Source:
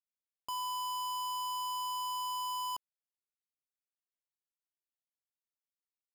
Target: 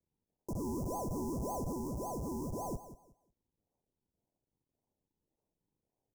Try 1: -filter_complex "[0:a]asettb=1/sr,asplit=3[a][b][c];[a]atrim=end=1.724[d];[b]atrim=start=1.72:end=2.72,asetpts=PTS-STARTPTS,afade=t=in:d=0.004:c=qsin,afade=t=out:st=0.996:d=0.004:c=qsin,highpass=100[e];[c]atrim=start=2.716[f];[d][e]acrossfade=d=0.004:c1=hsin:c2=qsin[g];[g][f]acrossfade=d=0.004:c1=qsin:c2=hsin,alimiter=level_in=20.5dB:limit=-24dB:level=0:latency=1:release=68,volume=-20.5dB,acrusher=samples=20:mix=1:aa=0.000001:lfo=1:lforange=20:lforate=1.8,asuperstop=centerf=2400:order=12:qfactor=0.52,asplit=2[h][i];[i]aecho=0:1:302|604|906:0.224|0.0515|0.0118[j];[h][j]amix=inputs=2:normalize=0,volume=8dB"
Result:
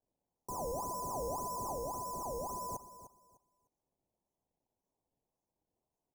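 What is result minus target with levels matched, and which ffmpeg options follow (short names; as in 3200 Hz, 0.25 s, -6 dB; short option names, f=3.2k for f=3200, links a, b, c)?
echo 0.119 s late; decimation with a swept rate: distortion -17 dB
-filter_complex "[0:a]asettb=1/sr,asplit=3[a][b][c];[a]atrim=end=1.724[d];[b]atrim=start=1.72:end=2.72,asetpts=PTS-STARTPTS,afade=t=in:d=0.004:c=qsin,afade=t=out:st=0.996:d=0.004:c=qsin,highpass=100[e];[c]atrim=start=2.716[f];[d][e]acrossfade=d=0.004:c1=hsin:c2=qsin[g];[g][f]acrossfade=d=0.004:c1=qsin:c2=hsin,alimiter=level_in=20.5dB:limit=-24dB:level=0:latency=1:release=68,volume=-20.5dB,acrusher=samples=48:mix=1:aa=0.000001:lfo=1:lforange=48:lforate=1.8,asuperstop=centerf=2400:order=12:qfactor=0.52,asplit=2[h][i];[i]aecho=0:1:183|366|549:0.224|0.0515|0.0118[j];[h][j]amix=inputs=2:normalize=0,volume=8dB"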